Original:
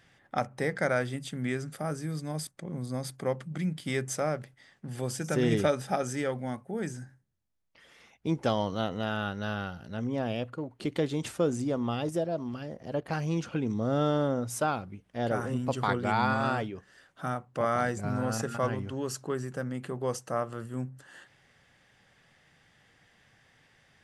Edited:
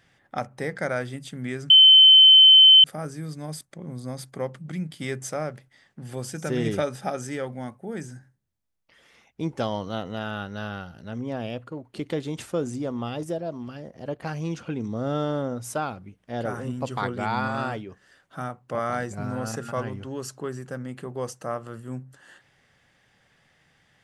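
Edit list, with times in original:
1.70 s: add tone 3.07 kHz -8.5 dBFS 1.14 s

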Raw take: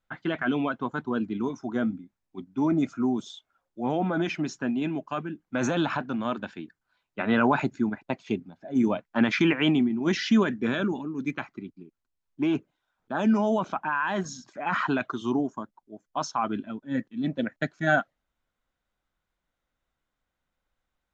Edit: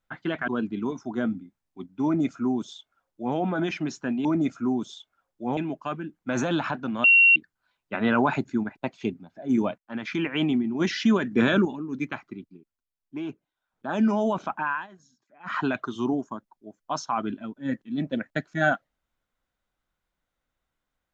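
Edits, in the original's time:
0.48–1.06 s: delete
2.62–3.94 s: copy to 4.83 s
6.30–6.62 s: bleep 2.74 kHz -12.5 dBFS
9.04–9.91 s: fade in, from -21 dB
10.57–10.91 s: gain +6 dB
11.60–13.27 s: dip -8 dB, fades 0.49 s
13.98–14.84 s: dip -22 dB, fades 0.15 s

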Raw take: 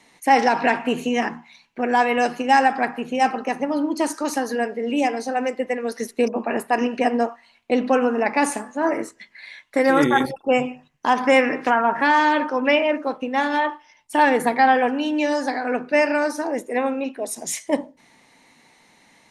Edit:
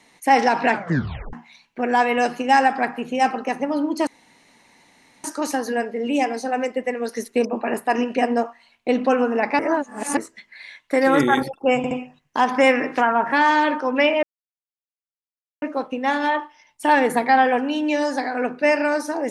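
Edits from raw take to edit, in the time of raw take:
0.71 s: tape stop 0.62 s
4.07 s: insert room tone 1.17 s
8.42–9.00 s: reverse
10.60 s: stutter 0.07 s, 3 plays
12.92 s: insert silence 1.39 s

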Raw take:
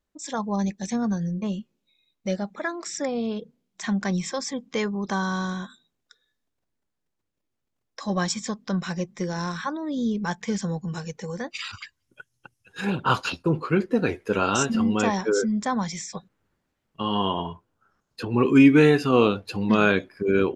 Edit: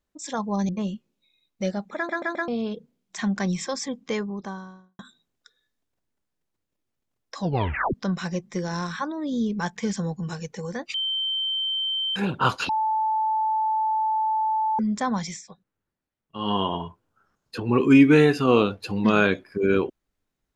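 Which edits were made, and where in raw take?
0.69–1.34 s: delete
2.61 s: stutter in place 0.13 s, 4 plays
4.56–5.64 s: studio fade out
8.05 s: tape stop 0.54 s
11.59–12.81 s: bleep 3.11 kHz -23.5 dBFS
13.34–15.44 s: bleep 874 Hz -20.5 dBFS
15.94–17.14 s: dip -11 dB, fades 0.16 s

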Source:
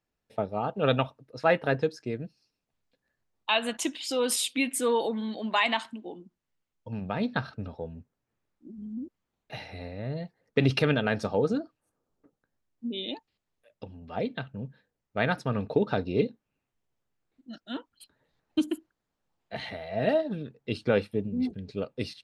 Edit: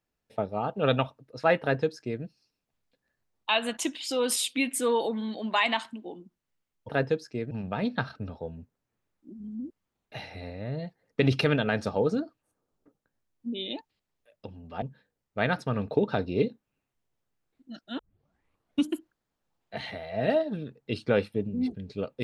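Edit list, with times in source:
1.61–2.23 s: copy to 6.89 s
14.20–14.61 s: delete
17.78 s: tape start 0.87 s

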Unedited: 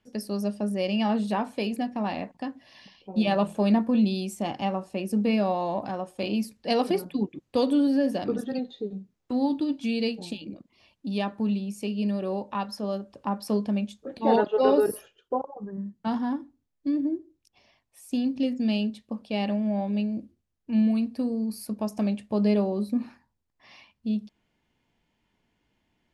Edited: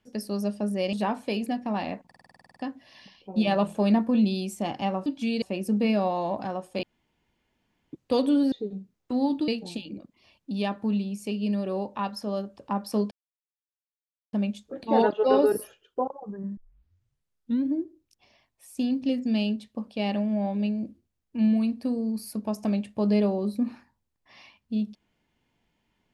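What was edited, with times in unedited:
0.93–1.23 s: delete
2.36 s: stutter 0.05 s, 11 plays
6.27–7.37 s: room tone
7.96–8.72 s: delete
9.68–10.04 s: move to 4.86 s
13.67 s: insert silence 1.22 s
15.91 s: tape start 1.15 s

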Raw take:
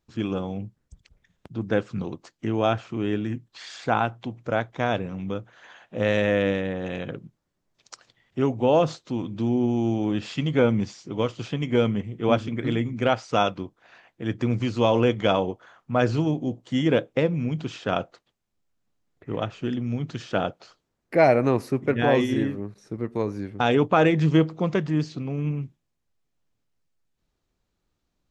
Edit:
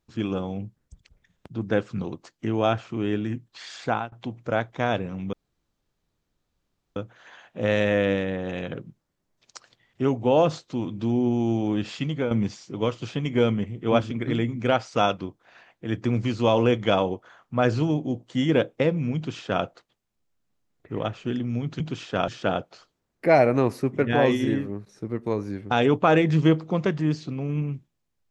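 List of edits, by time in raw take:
3.86–4.12 s: fade out, to -23 dB
5.33 s: insert room tone 1.63 s
10.19–10.68 s: fade out equal-power, to -10.5 dB
17.53–18.01 s: copy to 20.17 s

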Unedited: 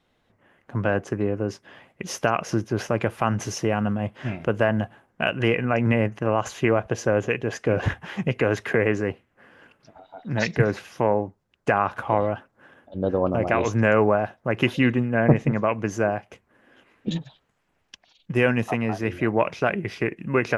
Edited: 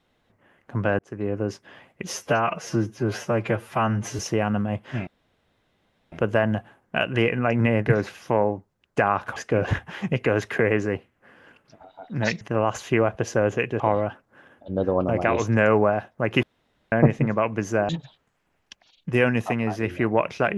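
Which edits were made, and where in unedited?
0.99–1.36 s: fade in
2.12–3.50 s: stretch 1.5×
4.38 s: insert room tone 1.05 s
6.12–7.51 s: swap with 10.56–12.06 s
14.69–15.18 s: room tone
16.15–17.11 s: delete

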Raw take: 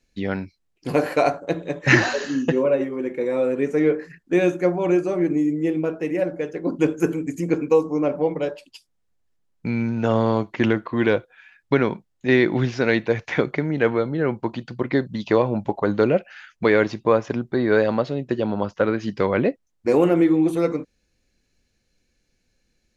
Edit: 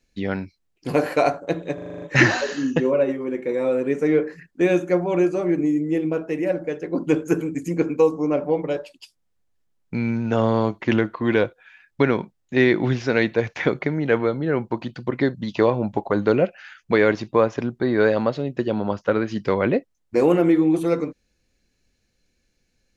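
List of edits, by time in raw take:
1.74 s: stutter 0.04 s, 8 plays

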